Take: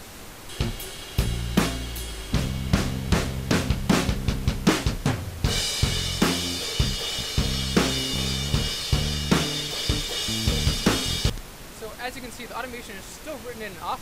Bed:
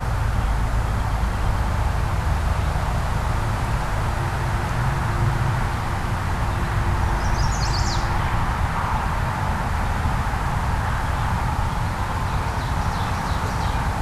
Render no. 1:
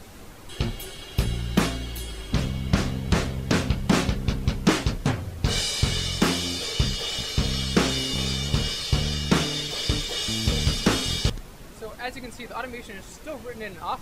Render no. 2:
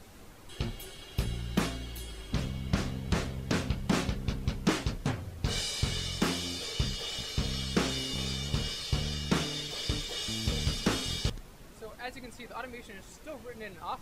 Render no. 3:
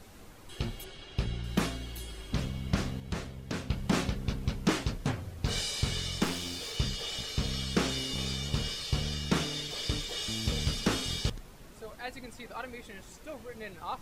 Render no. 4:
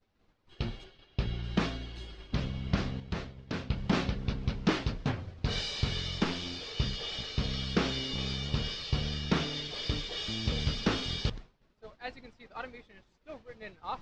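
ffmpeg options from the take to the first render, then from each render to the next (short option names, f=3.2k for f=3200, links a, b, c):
-af "afftdn=nr=7:nf=-41"
-af "volume=-7.5dB"
-filter_complex "[0:a]asettb=1/sr,asplit=3[a][b][c];[a]atrim=end=0.844[d];[b]atrim=start=0.84:end=1.44,asetpts=PTS-STARTPTS,afade=t=in:d=0.004:c=qsin,afade=t=out:st=0.596:d=0.004:c=qsin,lowpass=5.4k[e];[c]atrim=start=1.436[f];[d][e]acrossfade=d=0.004:c1=hsin:c2=qsin[g];[g][f]acrossfade=d=0.004:c1=qsin:c2=hsin,asettb=1/sr,asplit=3[h][i][j];[h]atrim=end=6.244[k];[i]atrim=start=6.24:end=6.77,asetpts=PTS-STARTPTS,afade=t=in:d=0.004:c=qsin,afade=t=out:st=0.526:d=0.004:c=qsin,aeval=exprs='clip(val(0),-1,0.0133)':c=same[l];[j]atrim=start=6.766[m];[k][l]acrossfade=d=0.004:c1=hsin:c2=qsin[n];[n][m]acrossfade=d=0.004:c1=qsin:c2=hsin,asplit=3[o][p][q];[o]atrim=end=3.002[r];[p]atrim=start=2.998:end=3.702,asetpts=PTS-STARTPTS,volume=-6dB[s];[q]atrim=start=3.698[t];[r][s]acrossfade=d=0.004:c1=hsin:c2=hsin[u];[u][t]acrossfade=d=0.004:c1=hsin:c2=hsin"
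-af "agate=range=-33dB:threshold=-37dB:ratio=3:detection=peak,lowpass=f=5.1k:w=0.5412,lowpass=f=5.1k:w=1.3066"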